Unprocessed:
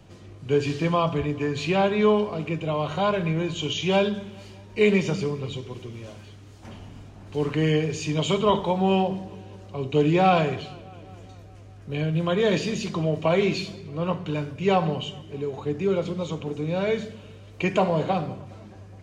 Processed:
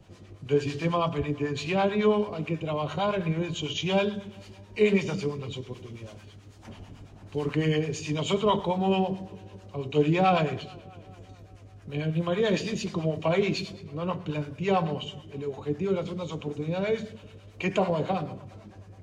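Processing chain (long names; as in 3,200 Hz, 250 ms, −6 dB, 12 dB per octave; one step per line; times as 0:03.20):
two-band tremolo in antiphase 9.1 Hz, depth 70%, crossover 650 Hz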